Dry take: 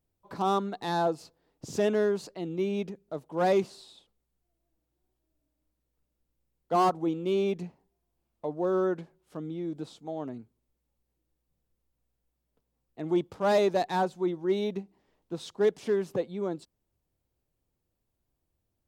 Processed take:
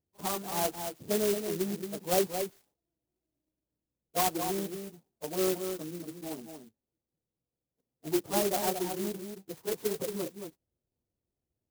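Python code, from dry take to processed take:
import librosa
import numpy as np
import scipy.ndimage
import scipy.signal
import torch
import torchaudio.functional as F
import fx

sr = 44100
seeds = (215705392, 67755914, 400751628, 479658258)

p1 = fx.env_lowpass(x, sr, base_hz=800.0, full_db=-26.0)
p2 = fx.highpass(p1, sr, hz=95.0, slope=6)
p3 = fx.stretch_vocoder_free(p2, sr, factor=0.62)
p4 = p3 + fx.echo_single(p3, sr, ms=225, db=-7.0, dry=0)
y = fx.clock_jitter(p4, sr, seeds[0], jitter_ms=0.14)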